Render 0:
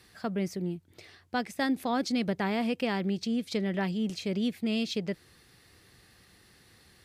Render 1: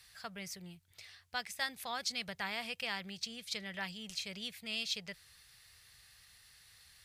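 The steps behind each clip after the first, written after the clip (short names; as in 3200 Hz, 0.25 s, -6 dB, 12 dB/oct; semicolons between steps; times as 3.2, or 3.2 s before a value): passive tone stack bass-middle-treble 10-0-10; gain +2 dB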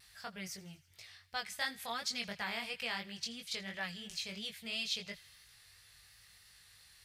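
chorus 2.9 Hz, delay 18.5 ms, depth 3.4 ms; vibrato 1 Hz 24 cents; thin delay 82 ms, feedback 66%, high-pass 1500 Hz, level -20 dB; gain +3 dB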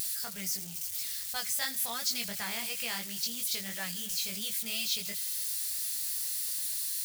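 switching spikes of -35 dBFS; tone controls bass +4 dB, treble +7 dB; upward compressor, threshold -38 dBFS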